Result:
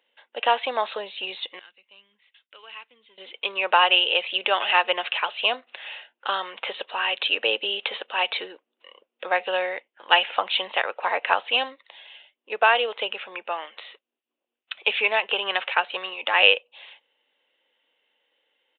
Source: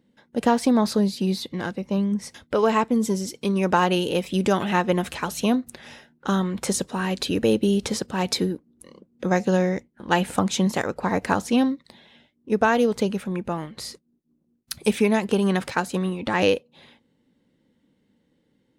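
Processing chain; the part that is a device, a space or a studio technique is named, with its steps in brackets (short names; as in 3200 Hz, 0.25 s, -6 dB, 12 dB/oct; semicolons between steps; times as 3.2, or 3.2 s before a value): 1.59–3.18 passive tone stack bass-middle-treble 6-0-2; musical greeting card (downsampling 8000 Hz; HPF 580 Hz 24 dB/oct; bell 2800 Hz +12 dB 0.56 oct); gain +2 dB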